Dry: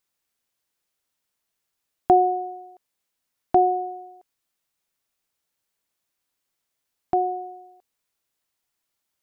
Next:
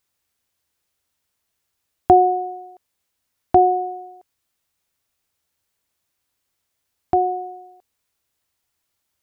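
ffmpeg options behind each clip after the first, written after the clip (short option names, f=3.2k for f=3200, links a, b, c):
-af "equalizer=f=78:w=1.8:g=11,volume=4dB"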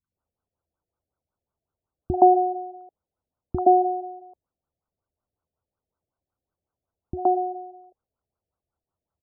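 -filter_complex "[0:a]acrossover=split=280|1100[a][b][c];[c]adelay=40[d];[b]adelay=120[e];[a][e][d]amix=inputs=3:normalize=0,afftfilt=real='re*lt(b*sr/1024,710*pow(1600/710,0.5+0.5*sin(2*PI*5.4*pts/sr)))':imag='im*lt(b*sr/1024,710*pow(1600/710,0.5+0.5*sin(2*PI*5.4*pts/sr)))':win_size=1024:overlap=0.75"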